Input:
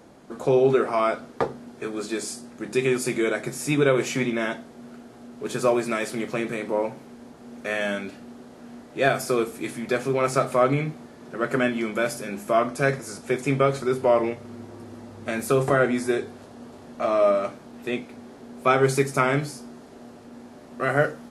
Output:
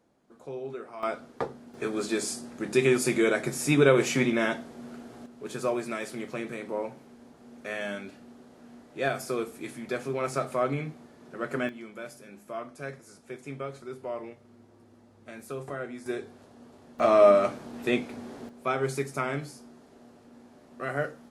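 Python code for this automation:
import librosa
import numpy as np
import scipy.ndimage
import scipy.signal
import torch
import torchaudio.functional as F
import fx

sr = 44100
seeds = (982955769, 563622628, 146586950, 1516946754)

y = fx.gain(x, sr, db=fx.steps((0.0, -18.5), (1.03, -7.0), (1.74, 0.0), (5.26, -7.5), (11.69, -16.0), (16.06, -9.0), (16.99, 2.0), (18.49, -9.0)))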